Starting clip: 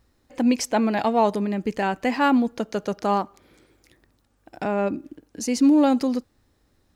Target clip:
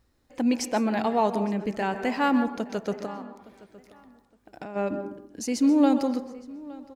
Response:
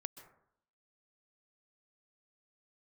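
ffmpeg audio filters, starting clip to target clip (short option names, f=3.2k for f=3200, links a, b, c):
-filter_complex "[0:a]asplit=3[a][b][c];[a]afade=t=out:st=3.04:d=0.02[d];[b]acompressor=threshold=-33dB:ratio=6,afade=t=in:st=3.04:d=0.02,afade=t=out:st=4.75:d=0.02[e];[c]afade=t=in:st=4.75:d=0.02[f];[d][e][f]amix=inputs=3:normalize=0,asplit=2[g][h];[h]adelay=865,lowpass=f=3.7k:p=1,volume=-20.5dB,asplit=2[i][j];[j]adelay=865,lowpass=f=3.7k:p=1,volume=0.27[k];[g][i][k]amix=inputs=3:normalize=0[l];[1:a]atrim=start_sample=2205[m];[l][m]afir=irnorm=-1:irlink=0"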